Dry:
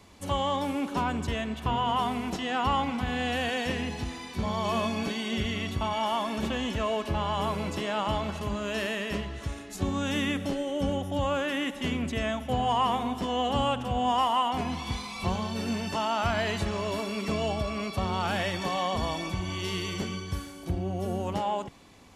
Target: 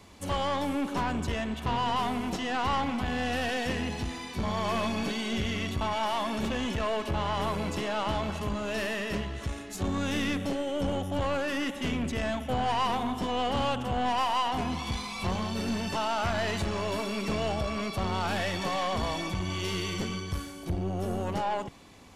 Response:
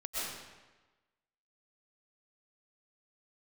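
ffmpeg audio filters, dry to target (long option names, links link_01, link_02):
-af "aeval=exprs='(tanh(20*val(0)+0.35)-tanh(0.35))/20':channel_layout=same,volume=2.5dB"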